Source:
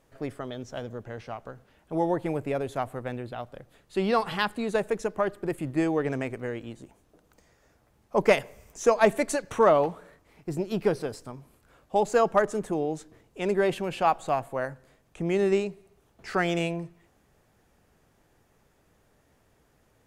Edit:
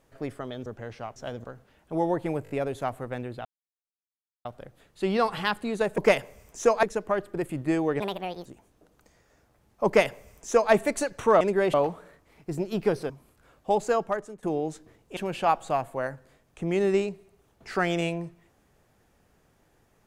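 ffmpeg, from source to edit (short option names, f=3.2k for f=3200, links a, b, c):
-filter_complex "[0:a]asplit=17[a][b][c][d][e][f][g][h][i][j][k][l][m][n][o][p][q];[a]atrim=end=0.662[r];[b]atrim=start=0.938:end=1.442[s];[c]atrim=start=0.658:end=0.942[t];[d]atrim=start=1.438:end=2.462[u];[e]atrim=start=2.438:end=2.462[v];[f]atrim=start=2.438:end=2.462[w];[g]atrim=start=2.438:end=3.39,asetpts=PTS-STARTPTS,afade=t=out:st=0.948:d=0.004:c=hsin,apad=pad_dur=1[x];[h]atrim=start=3.39:end=4.922,asetpts=PTS-STARTPTS,afade=t=in:d=0.004:c=hsin[y];[i]atrim=start=8.188:end=9.042[z];[j]atrim=start=4.918:end=6.094[aa];[k]atrim=start=6.09:end=6.78,asetpts=PTS-STARTPTS,asetrate=66591,aresample=44100[ab];[l]atrim=start=6.776:end=9.732[ac];[m]atrim=start=13.418:end=13.752[ad];[n]atrim=start=9.728:end=11.092[ae];[o]atrim=start=11.348:end=12.68,asetpts=PTS-STARTPTS,afade=t=out:st=0.622:d=0.71:silence=0.1[af];[p]atrim=start=12.68:end=13.422,asetpts=PTS-STARTPTS,afade=t=in:d=0.004:c=hsin:silence=0.1[ag];[q]atrim=start=13.748[ah];[r][s]acrossfade=d=0.004:c1=hsin:c2=hsin[ai];[ai][t]acrossfade=d=0.004:c1=hsin:c2=hsin[aj];[aj][u]acrossfade=d=0.004:c1=hsin:c2=hsin[ak];[ak][v]acrossfade=d=0.004:c1=hsin:c2=hsin[al];[al][w]acrossfade=d=0.004:c1=hsin:c2=hsin[am];[x][y]concat=n=2:v=0:a=1[an];[am][an]acrossfade=d=0.004:c1=hsin:c2=hsin[ao];[ao][z]acrossfade=d=0.004:c1=hsin:c2=hsin[ap];[ap][aa]acrossfade=d=0.004:c1=hsin:c2=hsin[aq];[aq][ab]acrossfade=d=0.004:c1=hsin:c2=hsin[ar];[ar][ac]acrossfade=d=0.004:c1=hsin:c2=hsin[as];[as][ad]acrossfade=d=0.004:c1=hsin:c2=hsin[at];[at][ae]acrossfade=d=0.004:c1=hsin:c2=hsin[au];[af][ag]concat=n=2:v=0:a=1[av];[au][av]acrossfade=d=0.004:c1=hsin:c2=hsin[aw];[aw][ah]acrossfade=d=0.004:c1=hsin:c2=hsin"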